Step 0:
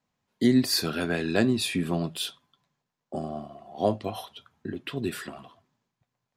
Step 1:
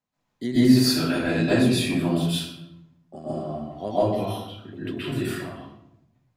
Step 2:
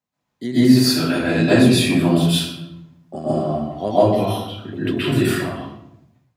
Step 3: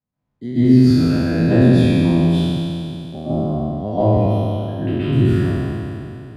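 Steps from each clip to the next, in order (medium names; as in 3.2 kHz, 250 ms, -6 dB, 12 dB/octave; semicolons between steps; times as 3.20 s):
reverberation RT60 0.75 s, pre-delay 120 ms, DRR -11.5 dB; trim -8 dB
high-pass 49 Hz; level rider gain up to 10 dB
spectral sustain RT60 2.80 s; RIAA curve playback; trim -9 dB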